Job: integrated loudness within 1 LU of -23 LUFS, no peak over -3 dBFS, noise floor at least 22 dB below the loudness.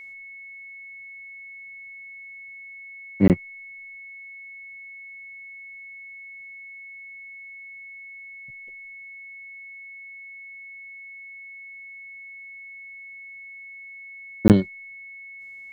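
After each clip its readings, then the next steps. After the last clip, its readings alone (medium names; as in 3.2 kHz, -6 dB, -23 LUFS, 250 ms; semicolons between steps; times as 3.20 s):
dropouts 2; longest dropout 18 ms; steady tone 2.2 kHz; tone level -39 dBFS; loudness -31.5 LUFS; peak level -2.0 dBFS; loudness target -23.0 LUFS
-> interpolate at 3.28/14.48 s, 18 ms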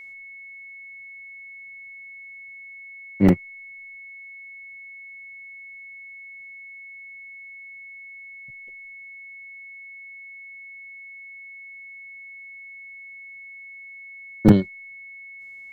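dropouts 0; steady tone 2.2 kHz; tone level -39 dBFS
-> band-stop 2.2 kHz, Q 30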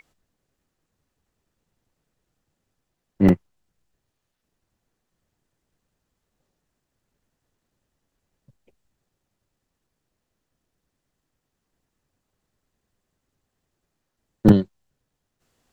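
steady tone not found; loudness -19.5 LUFS; peak level -2.5 dBFS; loudness target -23.0 LUFS
-> trim -3.5 dB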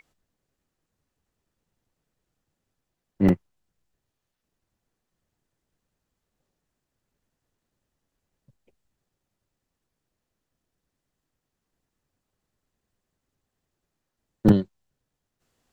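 loudness -23.0 LUFS; peak level -6.0 dBFS; noise floor -83 dBFS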